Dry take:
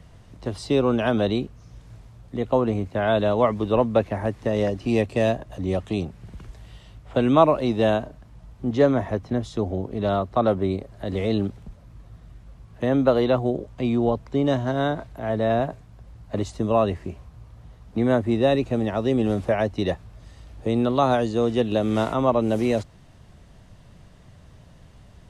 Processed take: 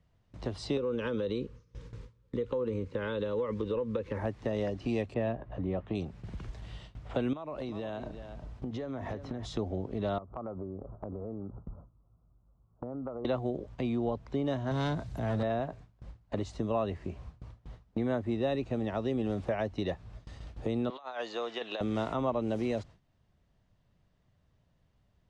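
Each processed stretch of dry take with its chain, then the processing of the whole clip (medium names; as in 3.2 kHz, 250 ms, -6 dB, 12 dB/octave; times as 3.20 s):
0.77–4.19 s: peaking EQ 490 Hz +12.5 dB 0.35 oct + compression, threshold -18 dBFS + Butterworth band-stop 700 Hz, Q 2
5.14–5.95 s: low-pass 2 kHz + doubling 17 ms -13.5 dB
7.33–9.46 s: compression 16:1, threshold -29 dBFS + delay 359 ms -12.5 dB
10.18–13.25 s: steep low-pass 1.4 kHz 96 dB/octave + compression 5:1, threshold -35 dBFS
14.71–15.43 s: high-pass 69 Hz + tone controls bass +10 dB, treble +12 dB + hard clipper -18.5 dBFS
20.90–21.81 s: high-pass 890 Hz + compressor with a negative ratio -31 dBFS, ratio -0.5 + distance through air 97 m
whole clip: low-pass 6.3 kHz 12 dB/octave; gate with hold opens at -35 dBFS; compression 2:1, threshold -36 dBFS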